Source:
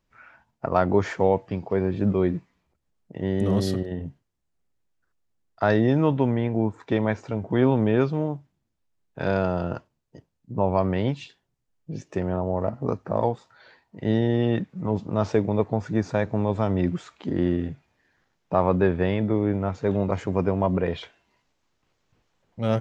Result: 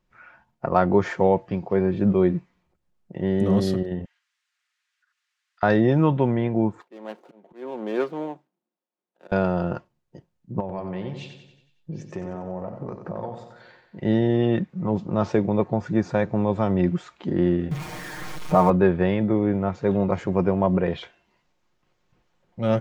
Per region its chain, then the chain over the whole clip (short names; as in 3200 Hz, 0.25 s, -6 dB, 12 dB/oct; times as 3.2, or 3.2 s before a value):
4.05–5.63 HPF 1500 Hz 24 dB/oct + upward compressor, threshold -58 dBFS + air absorption 64 m
6.81–9.32 median filter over 25 samples + Bessel high-pass 360 Hz, order 8 + auto swell 0.56 s
10.6–14 compressor 3:1, threshold -32 dBFS + feedback echo 92 ms, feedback 53%, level -8 dB
17.71–18.7 zero-crossing step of -32 dBFS + dynamic EQ 3200 Hz, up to -5 dB, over -44 dBFS, Q 1.1 + comb 6.5 ms, depth 84%
whole clip: high shelf 4000 Hz -6 dB; comb 5.6 ms, depth 35%; gain +1.5 dB